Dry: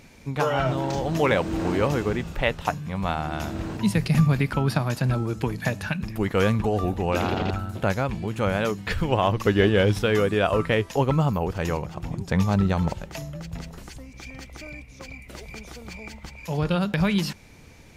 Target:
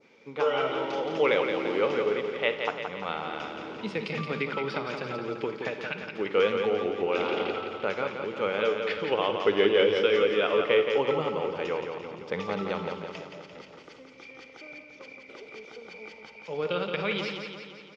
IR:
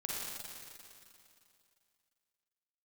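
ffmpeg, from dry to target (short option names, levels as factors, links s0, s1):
-filter_complex "[0:a]highpass=450,equalizer=f=450:t=q:w=4:g=6,equalizer=f=690:t=q:w=4:g=-10,equalizer=f=990:t=q:w=4:g=-6,equalizer=f=1700:t=q:w=4:g=-10,equalizer=f=2700:t=q:w=4:g=-5,equalizer=f=4100:t=q:w=4:g=-9,lowpass=f=4200:w=0.5412,lowpass=f=4200:w=1.3066,asplit=2[s0][s1];[1:a]atrim=start_sample=2205,atrim=end_sample=4410[s2];[s1][s2]afir=irnorm=-1:irlink=0,volume=0.501[s3];[s0][s3]amix=inputs=2:normalize=0,adynamicequalizer=threshold=0.00794:dfrequency=2800:dqfactor=0.97:tfrequency=2800:tqfactor=0.97:attack=5:release=100:ratio=0.375:range=2.5:mode=boostabove:tftype=bell,aecho=1:1:172|344|516|688|860|1032|1204:0.501|0.286|0.163|0.0928|0.0529|0.0302|0.0172,volume=0.708"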